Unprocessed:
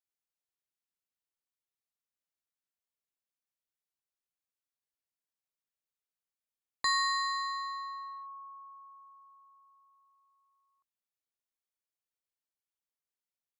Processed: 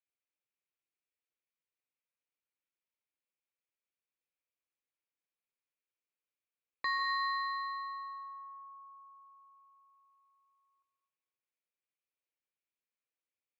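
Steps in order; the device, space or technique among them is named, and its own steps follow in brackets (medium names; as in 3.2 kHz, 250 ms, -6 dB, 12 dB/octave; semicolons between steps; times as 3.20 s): guitar cabinet (cabinet simulation 88–3500 Hz, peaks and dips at 180 Hz -7 dB, 320 Hz +3 dB, 520 Hz +6 dB, 730 Hz -5 dB, 2.4 kHz +9 dB); plate-style reverb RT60 1 s, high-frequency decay 0.6×, pre-delay 120 ms, DRR 6 dB; trim -4 dB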